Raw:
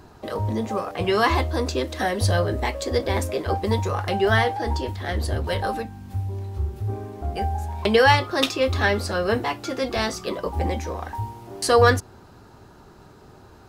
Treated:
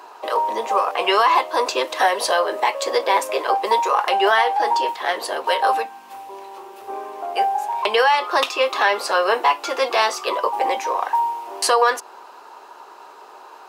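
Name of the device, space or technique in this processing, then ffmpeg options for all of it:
laptop speaker: -af "highpass=f=430:w=0.5412,highpass=f=430:w=1.3066,equalizer=f=990:t=o:w=0.6:g=11,equalizer=f=2.7k:t=o:w=0.46:g=6,alimiter=limit=-11.5dB:level=0:latency=1:release=208,volume=5dB"

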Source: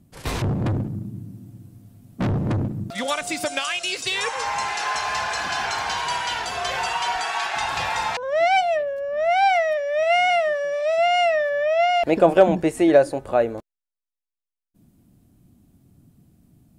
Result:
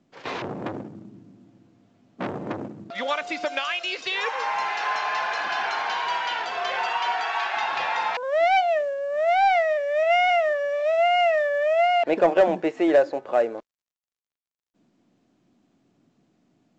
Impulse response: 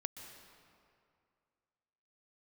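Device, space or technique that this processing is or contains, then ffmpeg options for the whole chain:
telephone: -af "highpass=350,lowpass=3.3k,asoftclip=type=tanh:threshold=-9.5dB" -ar 16000 -c:a pcm_mulaw

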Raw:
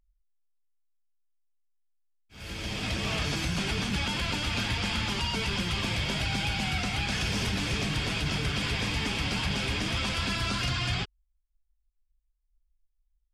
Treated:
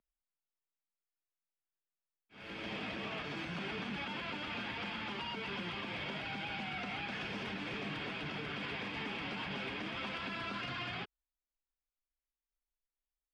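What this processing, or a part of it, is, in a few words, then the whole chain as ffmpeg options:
DJ mixer with the lows and highs turned down: -filter_complex "[0:a]acrossover=split=170 3300:gain=0.0794 1 0.0708[a][b][c];[a][b][c]amix=inputs=3:normalize=0,alimiter=level_in=4.5dB:limit=-24dB:level=0:latency=1:release=99,volume=-4.5dB,volume=-3dB"

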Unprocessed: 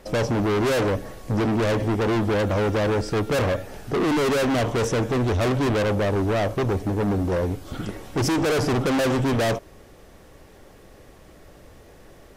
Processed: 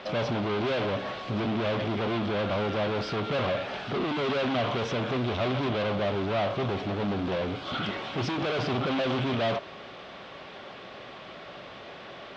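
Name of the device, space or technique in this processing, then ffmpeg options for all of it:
overdrive pedal into a guitar cabinet: -filter_complex "[0:a]asplit=2[a][b];[b]highpass=f=720:p=1,volume=23dB,asoftclip=type=tanh:threshold=-17.5dB[c];[a][c]amix=inputs=2:normalize=0,lowpass=f=5.7k:p=1,volume=-6dB,highpass=78,equalizer=f=82:t=q:w=4:g=-8,equalizer=f=310:t=q:w=4:g=-7,equalizer=f=470:t=q:w=4:g=-8,equalizer=f=870:t=q:w=4:g=-4,equalizer=f=1.8k:t=q:w=4:g=-6,equalizer=f=3.4k:t=q:w=4:g=3,lowpass=f=4k:w=0.5412,lowpass=f=4k:w=1.3066,volume=-2.5dB"

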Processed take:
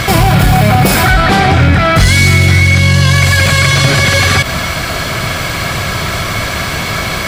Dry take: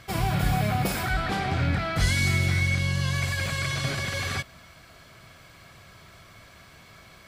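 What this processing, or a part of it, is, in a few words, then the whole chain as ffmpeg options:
loud club master: -filter_complex "[0:a]acompressor=threshold=-28dB:ratio=2.5,asoftclip=type=hard:threshold=-24dB,alimiter=level_in=35dB:limit=-1dB:release=50:level=0:latency=1,asettb=1/sr,asplit=3[a][b][c];[a]atrim=end=1.534[d];[b]atrim=start=1.53:end=1.98,asetpts=PTS-STARTPTS,afade=t=in:d=0.004:c=qsin,afade=t=out:st=0.446:d=0.004:c=qsin,bandreject=f=4.4k:w=11[e];[c]atrim=start=1.976[f];[d][e]acrossfade=d=0.004:c1=hsin:c2=qsin[g];[g][f]acrossfade=d=0.004:c1=qsin:c2=hsin,volume=-1dB"

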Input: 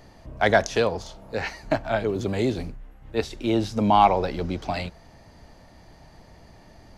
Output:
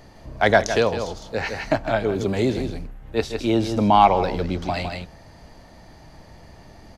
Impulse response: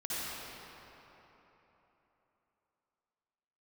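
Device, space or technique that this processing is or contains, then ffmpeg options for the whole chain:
ducked delay: -filter_complex "[0:a]asplit=3[a][b][c];[b]adelay=159,volume=-4dB[d];[c]apad=whole_len=314604[e];[d][e]sidechaincompress=threshold=-30dB:ratio=4:attack=8.9:release=191[f];[a][f]amix=inputs=2:normalize=0,volume=2.5dB"

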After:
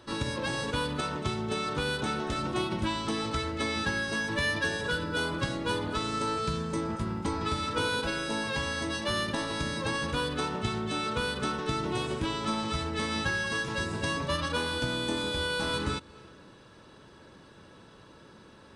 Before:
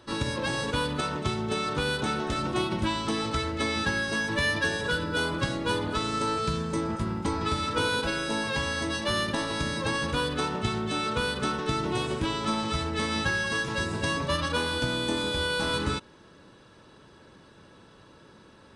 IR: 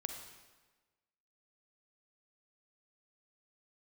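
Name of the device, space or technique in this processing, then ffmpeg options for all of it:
ducked reverb: -filter_complex "[0:a]asplit=3[a][b][c];[1:a]atrim=start_sample=2205[d];[b][d]afir=irnorm=-1:irlink=0[e];[c]apad=whole_len=826991[f];[e][f]sidechaincompress=threshold=-44dB:ratio=8:attack=16:release=199,volume=-5dB[g];[a][g]amix=inputs=2:normalize=0,volume=-3dB"

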